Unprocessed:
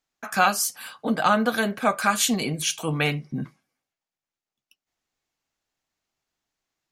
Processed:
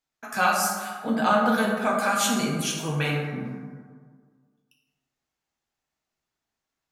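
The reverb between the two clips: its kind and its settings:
dense smooth reverb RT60 1.7 s, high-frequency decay 0.4×, DRR −2.5 dB
level −5.5 dB

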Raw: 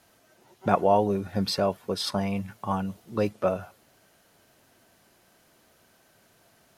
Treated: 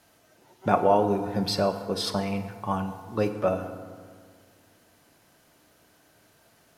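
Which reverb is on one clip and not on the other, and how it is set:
feedback delay network reverb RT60 1.9 s, low-frequency decay 1.2×, high-frequency decay 0.5×, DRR 7 dB

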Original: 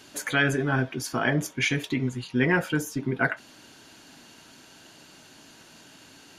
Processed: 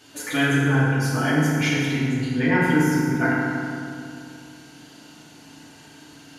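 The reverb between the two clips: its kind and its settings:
feedback delay network reverb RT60 2.5 s, low-frequency decay 1.3×, high-frequency decay 0.55×, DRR −7.5 dB
level −4.5 dB

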